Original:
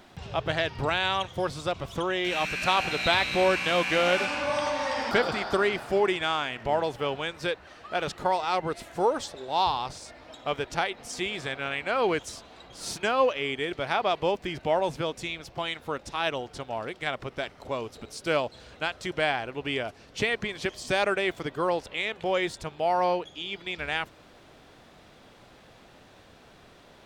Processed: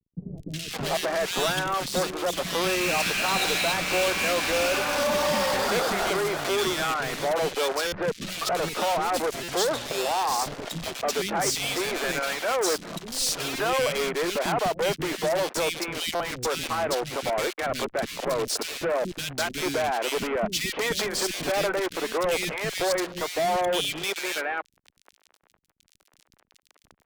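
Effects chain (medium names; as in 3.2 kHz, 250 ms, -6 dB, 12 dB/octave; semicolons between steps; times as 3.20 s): Chebyshev high-pass 170 Hz, order 4; peaking EQ 890 Hz -4 dB 0.33 oct; in parallel at +2 dB: compression 6:1, threshold -35 dBFS, peak gain reduction 15.5 dB; on the sum: fuzz box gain 38 dB, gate -39 dBFS; three bands offset in time lows, highs, mids 370/570 ms, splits 290/2100 Hz; buffer glitch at 7.87/9.43/16.15 s, samples 256, times 8; trim -8.5 dB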